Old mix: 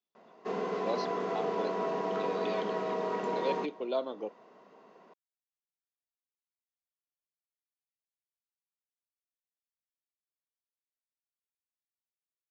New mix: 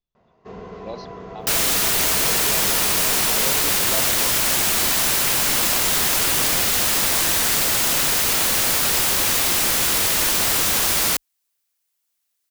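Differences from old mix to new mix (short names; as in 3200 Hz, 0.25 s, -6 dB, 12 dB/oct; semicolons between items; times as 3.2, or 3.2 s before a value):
first sound -4.0 dB; second sound: unmuted; master: remove HPF 220 Hz 24 dB/oct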